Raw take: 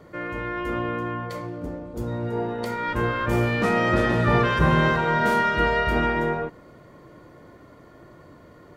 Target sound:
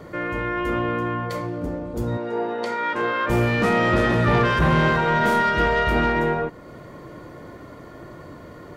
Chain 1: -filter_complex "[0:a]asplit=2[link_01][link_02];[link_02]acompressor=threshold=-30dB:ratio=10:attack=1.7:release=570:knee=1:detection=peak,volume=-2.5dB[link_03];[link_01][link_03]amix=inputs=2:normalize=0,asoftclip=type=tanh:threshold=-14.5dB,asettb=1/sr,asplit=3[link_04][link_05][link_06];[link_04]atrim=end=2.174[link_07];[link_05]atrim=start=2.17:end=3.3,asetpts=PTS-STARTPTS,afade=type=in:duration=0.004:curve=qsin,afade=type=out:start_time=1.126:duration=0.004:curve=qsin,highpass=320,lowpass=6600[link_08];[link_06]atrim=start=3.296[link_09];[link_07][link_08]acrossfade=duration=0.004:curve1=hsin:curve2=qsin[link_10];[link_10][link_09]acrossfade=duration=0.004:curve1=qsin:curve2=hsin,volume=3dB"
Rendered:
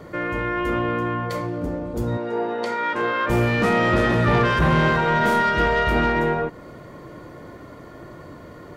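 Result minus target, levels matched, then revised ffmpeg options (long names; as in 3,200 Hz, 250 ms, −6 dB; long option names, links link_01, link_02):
downward compressor: peak gain reduction −5.5 dB
-filter_complex "[0:a]asplit=2[link_01][link_02];[link_02]acompressor=threshold=-36dB:ratio=10:attack=1.7:release=570:knee=1:detection=peak,volume=-2.5dB[link_03];[link_01][link_03]amix=inputs=2:normalize=0,asoftclip=type=tanh:threshold=-14.5dB,asettb=1/sr,asplit=3[link_04][link_05][link_06];[link_04]atrim=end=2.174[link_07];[link_05]atrim=start=2.17:end=3.3,asetpts=PTS-STARTPTS,afade=type=in:duration=0.004:curve=qsin,afade=type=out:start_time=1.126:duration=0.004:curve=qsin,highpass=320,lowpass=6600[link_08];[link_06]atrim=start=3.296[link_09];[link_07][link_08]acrossfade=duration=0.004:curve1=hsin:curve2=qsin[link_10];[link_10][link_09]acrossfade=duration=0.004:curve1=qsin:curve2=hsin,volume=3dB"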